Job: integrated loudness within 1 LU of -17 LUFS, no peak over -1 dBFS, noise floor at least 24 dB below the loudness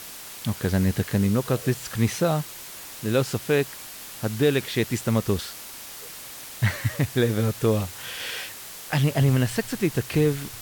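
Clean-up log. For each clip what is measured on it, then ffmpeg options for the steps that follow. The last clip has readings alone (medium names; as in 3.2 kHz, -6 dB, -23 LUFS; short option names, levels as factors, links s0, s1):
noise floor -40 dBFS; noise floor target -49 dBFS; loudness -25.0 LUFS; peak level -10.0 dBFS; loudness target -17.0 LUFS
-> -af "afftdn=nr=9:nf=-40"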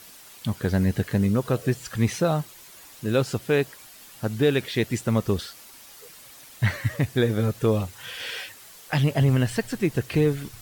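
noise floor -47 dBFS; noise floor target -49 dBFS
-> -af "afftdn=nr=6:nf=-47"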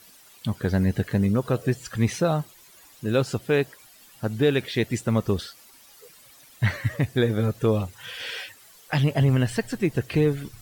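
noise floor -52 dBFS; loudness -25.0 LUFS; peak level -10.0 dBFS; loudness target -17.0 LUFS
-> -af "volume=2.51"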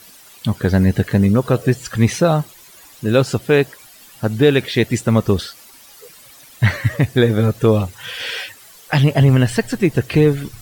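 loudness -17.0 LUFS; peak level -2.0 dBFS; noise floor -44 dBFS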